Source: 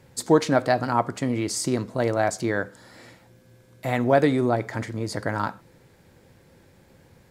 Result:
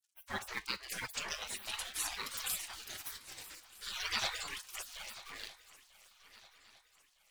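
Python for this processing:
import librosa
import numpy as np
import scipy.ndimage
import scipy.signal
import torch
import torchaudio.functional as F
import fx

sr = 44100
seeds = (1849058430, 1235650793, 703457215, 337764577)

y = scipy.signal.sosfilt(scipy.signal.butter(2, 6200.0, 'lowpass', fs=sr, output='sos'), x)
y = fx.echo_pitch(y, sr, ms=762, semitones=4, count=3, db_per_echo=-3.0)
y = fx.dereverb_blind(y, sr, rt60_s=1.4)
y = fx.peak_eq(y, sr, hz=110.0, db=3.0, octaves=0.65)
y = np.sign(y) * np.maximum(np.abs(y) - 10.0 ** (-49.5 / 20.0), 0.0)
y = fx.comb_fb(y, sr, f0_hz=51.0, decay_s=0.25, harmonics='all', damping=0.0, mix_pct=50)
y = fx.spec_gate(y, sr, threshold_db=-30, keep='weak')
y = fx.echo_swing(y, sr, ms=1257, ratio=3, feedback_pct=39, wet_db=-17.5)
y = fx.band_squash(y, sr, depth_pct=40, at=(0.57, 1.52))
y = y * 10.0 ** (8.0 / 20.0)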